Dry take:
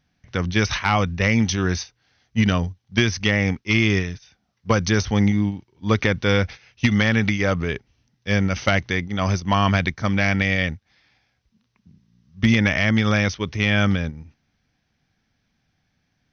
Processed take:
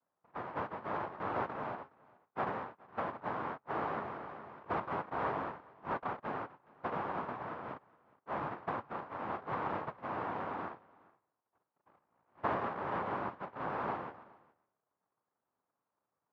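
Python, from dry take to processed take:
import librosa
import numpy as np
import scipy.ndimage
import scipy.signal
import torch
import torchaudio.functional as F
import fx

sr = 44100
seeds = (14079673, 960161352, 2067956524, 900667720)

y = fx.peak_eq(x, sr, hz=460.0, db=fx.line((6.28, -6.5), (7.64, -13.0)), octaves=1.3, at=(6.28, 7.64), fade=0.02)
y = fx.noise_vocoder(y, sr, seeds[0], bands=1)
y = fx.ladder_lowpass(y, sr, hz=1300.0, resonance_pct=35)
y = y + 10.0 ** (-24.0 / 20.0) * np.pad(y, (int(417 * sr / 1000.0), 0))[:len(y)]
y = fx.sustainer(y, sr, db_per_s=21.0, at=(4.01, 4.8))
y = y * librosa.db_to_amplitude(-4.5)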